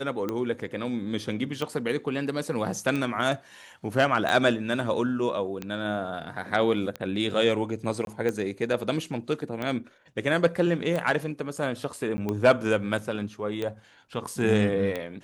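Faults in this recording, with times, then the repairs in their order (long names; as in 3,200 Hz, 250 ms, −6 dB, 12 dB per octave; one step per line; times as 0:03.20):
scratch tick 45 rpm −17 dBFS
0:08.05–0:08.07: drop-out 22 ms
0:12.17–0:12.18: drop-out 10 ms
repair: click removal
repair the gap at 0:08.05, 22 ms
repair the gap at 0:12.17, 10 ms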